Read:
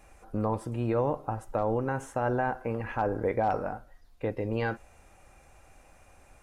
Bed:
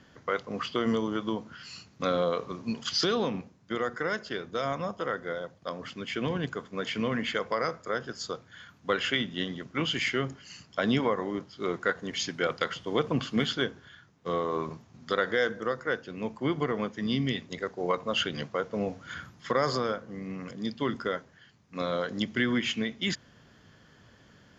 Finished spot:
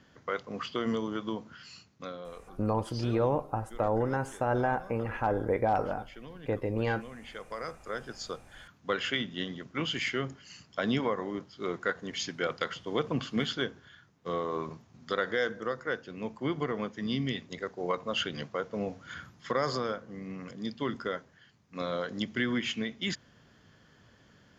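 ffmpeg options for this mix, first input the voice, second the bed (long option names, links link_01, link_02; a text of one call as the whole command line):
ffmpeg -i stem1.wav -i stem2.wav -filter_complex "[0:a]adelay=2250,volume=0dB[link_01];[1:a]volume=10dB,afade=type=out:start_time=1.57:duration=0.61:silence=0.223872,afade=type=in:start_time=7.23:duration=1.03:silence=0.211349[link_02];[link_01][link_02]amix=inputs=2:normalize=0" out.wav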